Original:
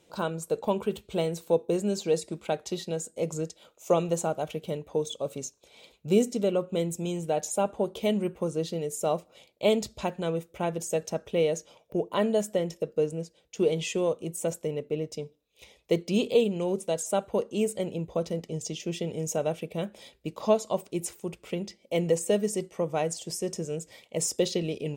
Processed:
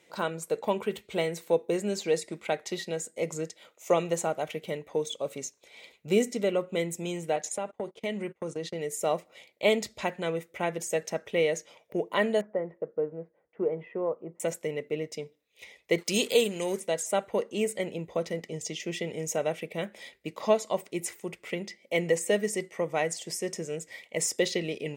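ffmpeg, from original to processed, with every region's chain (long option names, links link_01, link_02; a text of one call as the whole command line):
ffmpeg -i in.wav -filter_complex "[0:a]asettb=1/sr,asplit=3[link_01][link_02][link_03];[link_01]atrim=end=7.364[link_04];[link_02]atrim=start=7.36:end=8.81,asetpts=PTS-STARTPTS,afade=type=in:duration=0.004:curve=qsin,afade=type=out:start_time=1.446:duration=0.004:curve=qsin,agate=range=-24dB:threshold=-38dB:ratio=16:release=100:detection=peak,lowpass=9500,acompressor=threshold=-28dB:ratio=4:attack=3.2:release=140:knee=1:detection=peak[link_05];[link_03]atrim=start=8.806[link_06];[link_04][link_05]acrossfade=duration=0.004:curve1=hsin:curve2=qsin[link_07];[link_07][link_06]acrossfade=duration=0.004:curve1=qsin:curve2=hsin,asettb=1/sr,asplit=3[link_08][link_09][link_10];[link_08]atrim=end=12.414[link_11];[link_09]atrim=start=12.41:end=14.4,asetpts=PTS-STARTPTS,afade=type=in:duration=0.004:curve=qsin,afade=type=out:start_time=1.986:duration=0.004:curve=qsin,lowpass=frequency=1300:width=0.5412,lowpass=frequency=1300:width=1.3066,lowshelf=frequency=390:gain=-6[link_12];[link_10]atrim=start=14.396[link_13];[link_11][link_12]acrossfade=duration=0.004:curve1=hsin:curve2=qsin[link_14];[link_14][link_13]acrossfade=duration=0.004:curve1=qsin:curve2=hsin,asettb=1/sr,asplit=3[link_15][link_16][link_17];[link_15]atrim=end=15.984[link_18];[link_16]atrim=start=15.98:end=16.8,asetpts=PTS-STARTPTS,afade=type=in:duration=0.004:curve=qsin,afade=type=out:start_time=0.816:duration=0.004:curve=qsin,bass=frequency=250:gain=-2,treble=frequency=4000:gain=15,acompressor=mode=upward:threshold=-38dB:ratio=2.5:attack=3.2:release=140:knee=2.83:detection=peak,aeval=exprs='sgn(val(0))*max(abs(val(0))-0.00251,0)':channel_layout=same[link_19];[link_17]atrim=start=16.796[link_20];[link_18][link_19]acrossfade=duration=0.004:curve1=hsin:curve2=qsin[link_21];[link_21][link_20]acrossfade=duration=0.004:curve1=qsin:curve2=hsin,highpass=frequency=240:poles=1,equalizer=frequency=2000:width_type=o:width=0.41:gain=13.5" out.wav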